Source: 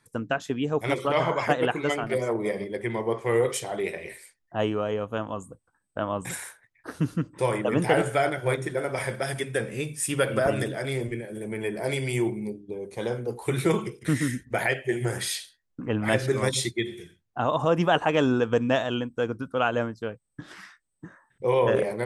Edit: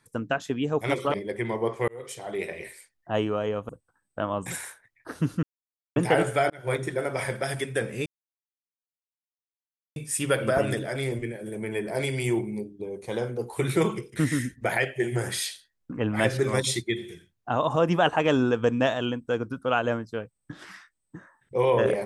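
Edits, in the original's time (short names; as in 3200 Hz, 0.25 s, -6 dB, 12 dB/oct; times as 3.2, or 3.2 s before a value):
1.14–2.59 cut
3.33–3.96 fade in
5.14–5.48 cut
7.22–7.75 mute
8.29–8.56 fade in
9.85 insert silence 1.90 s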